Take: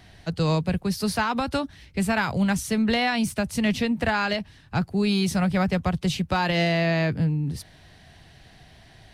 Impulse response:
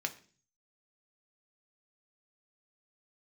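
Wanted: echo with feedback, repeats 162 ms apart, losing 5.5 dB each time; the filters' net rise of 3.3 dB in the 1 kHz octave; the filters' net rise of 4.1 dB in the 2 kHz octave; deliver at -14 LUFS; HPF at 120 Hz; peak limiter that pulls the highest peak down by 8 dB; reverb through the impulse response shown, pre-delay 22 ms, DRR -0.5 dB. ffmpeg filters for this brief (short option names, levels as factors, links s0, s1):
-filter_complex "[0:a]highpass=120,equalizer=f=1000:t=o:g=3.5,equalizer=f=2000:t=o:g=4,alimiter=limit=0.158:level=0:latency=1,aecho=1:1:162|324|486|648|810|972|1134:0.531|0.281|0.149|0.079|0.0419|0.0222|0.0118,asplit=2[s0][s1];[1:a]atrim=start_sample=2205,adelay=22[s2];[s1][s2]afir=irnorm=-1:irlink=0,volume=0.75[s3];[s0][s3]amix=inputs=2:normalize=0,volume=2.37"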